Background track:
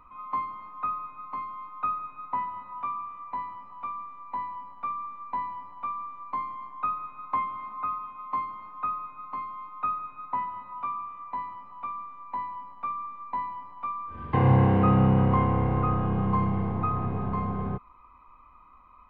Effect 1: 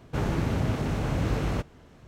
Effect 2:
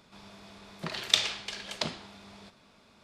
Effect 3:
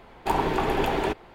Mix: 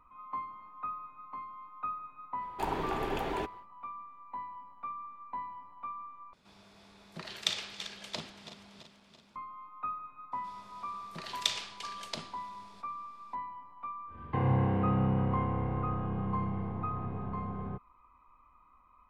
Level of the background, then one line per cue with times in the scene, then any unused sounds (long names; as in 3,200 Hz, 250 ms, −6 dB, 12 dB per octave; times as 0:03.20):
background track −8 dB
0:02.33: mix in 3 −9.5 dB, fades 0.10 s
0:06.33: overwrite with 2 −7.5 dB + feedback delay that plays each chunk backwards 167 ms, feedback 72%, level −11 dB
0:10.32: mix in 2 −8 dB + high-shelf EQ 6,900 Hz +5.5 dB
not used: 1